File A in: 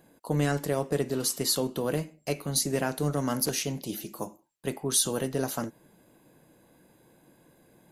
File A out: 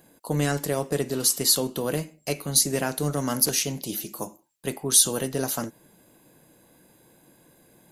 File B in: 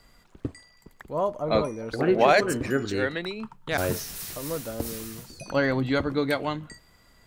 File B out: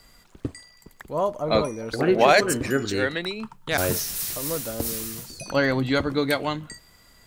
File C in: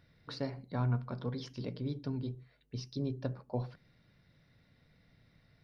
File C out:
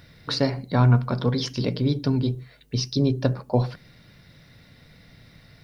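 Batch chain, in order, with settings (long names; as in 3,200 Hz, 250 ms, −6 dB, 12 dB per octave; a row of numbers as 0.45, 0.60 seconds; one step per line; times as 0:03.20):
high-shelf EQ 3,500 Hz +7 dB
loudness normalisation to −24 LKFS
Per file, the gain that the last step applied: +1.5, +1.5, +14.5 decibels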